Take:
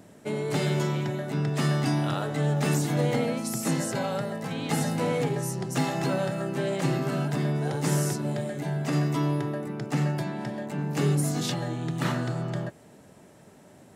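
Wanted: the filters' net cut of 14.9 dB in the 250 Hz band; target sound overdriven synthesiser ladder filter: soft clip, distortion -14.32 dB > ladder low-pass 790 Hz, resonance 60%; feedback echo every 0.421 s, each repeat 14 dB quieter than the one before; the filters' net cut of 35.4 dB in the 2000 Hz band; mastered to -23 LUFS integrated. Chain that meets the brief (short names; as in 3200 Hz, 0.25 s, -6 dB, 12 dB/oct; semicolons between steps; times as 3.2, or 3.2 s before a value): bell 250 Hz -8.5 dB; bell 2000 Hz -7.5 dB; feedback echo 0.421 s, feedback 20%, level -14 dB; soft clip -26 dBFS; ladder low-pass 790 Hz, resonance 60%; gain +18 dB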